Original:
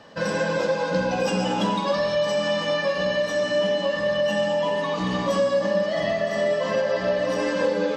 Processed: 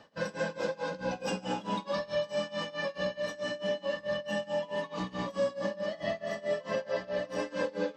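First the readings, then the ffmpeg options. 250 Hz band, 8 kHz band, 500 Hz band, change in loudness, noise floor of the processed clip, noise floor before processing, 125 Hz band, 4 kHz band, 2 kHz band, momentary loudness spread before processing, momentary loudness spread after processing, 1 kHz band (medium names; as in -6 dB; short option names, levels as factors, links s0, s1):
-10.5 dB, -10.5 dB, -10.5 dB, -10.5 dB, -53 dBFS, -28 dBFS, -11.0 dB, -11.0 dB, -10.0 dB, 2 LU, 3 LU, -10.5 dB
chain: -af "tremolo=f=4.6:d=0.92,volume=0.473"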